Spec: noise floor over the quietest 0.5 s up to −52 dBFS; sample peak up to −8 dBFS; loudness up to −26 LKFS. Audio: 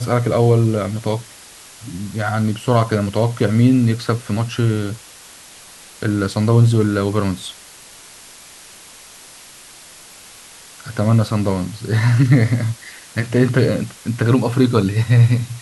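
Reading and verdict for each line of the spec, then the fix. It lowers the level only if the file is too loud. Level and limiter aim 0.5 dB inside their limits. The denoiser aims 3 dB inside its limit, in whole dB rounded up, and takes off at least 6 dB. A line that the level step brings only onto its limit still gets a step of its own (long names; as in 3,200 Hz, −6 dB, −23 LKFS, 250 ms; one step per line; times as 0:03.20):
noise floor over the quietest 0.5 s −41 dBFS: out of spec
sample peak −2.0 dBFS: out of spec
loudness −17.5 LKFS: out of spec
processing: broadband denoise 6 dB, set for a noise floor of −41 dBFS
level −9 dB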